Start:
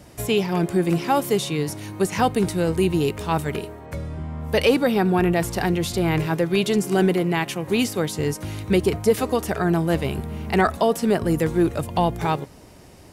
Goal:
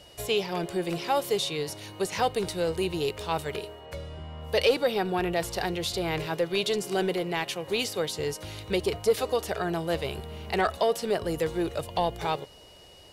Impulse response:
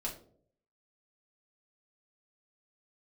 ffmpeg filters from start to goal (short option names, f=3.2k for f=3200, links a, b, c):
-af "asoftclip=type=tanh:threshold=-8dB,equalizer=f=125:t=o:w=1:g=-4,equalizer=f=250:t=o:w=1:g=-9,equalizer=f=500:t=o:w=1:g=6,equalizer=f=4k:t=o:w=1:g=8,aeval=exprs='val(0)+0.00447*sin(2*PI*2900*n/s)':c=same,volume=-6.5dB"